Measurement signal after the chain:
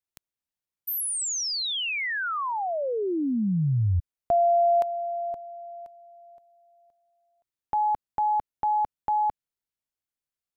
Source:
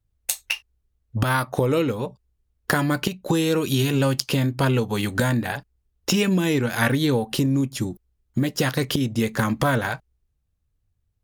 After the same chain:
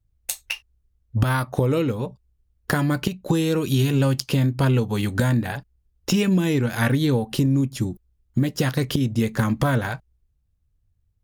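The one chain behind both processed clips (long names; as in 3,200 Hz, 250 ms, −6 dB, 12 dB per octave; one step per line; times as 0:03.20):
low-shelf EQ 230 Hz +8 dB
level −3 dB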